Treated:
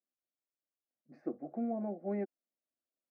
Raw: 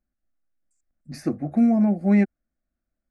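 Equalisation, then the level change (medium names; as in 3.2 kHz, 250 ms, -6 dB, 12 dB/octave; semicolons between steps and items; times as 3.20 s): ladder band-pass 550 Hz, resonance 25%; +1.0 dB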